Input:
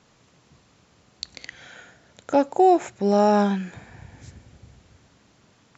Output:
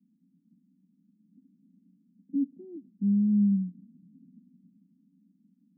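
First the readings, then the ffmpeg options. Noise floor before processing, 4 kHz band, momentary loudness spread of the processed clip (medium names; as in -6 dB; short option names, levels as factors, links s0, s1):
-60 dBFS, under -40 dB, 18 LU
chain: -af "asuperpass=centerf=220:order=8:qfactor=2.1"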